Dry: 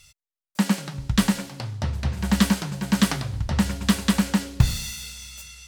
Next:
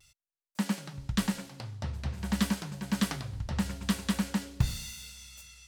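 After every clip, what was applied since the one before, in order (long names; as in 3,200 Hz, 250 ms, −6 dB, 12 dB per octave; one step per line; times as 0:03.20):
pitch vibrato 0.47 Hz 21 cents
level −9 dB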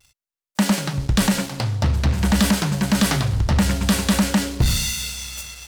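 in parallel at +1.5 dB: brickwall limiter −22.5 dBFS, peak gain reduction 9.5 dB
on the sum: leveller curve on the samples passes 3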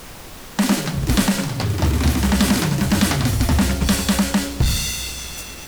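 delay with pitch and tempo change per echo 166 ms, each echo +4 semitones, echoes 3, each echo −6 dB
background noise pink −37 dBFS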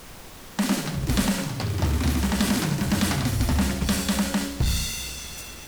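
flutter between parallel walls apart 11.7 metres, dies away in 0.43 s
level −6 dB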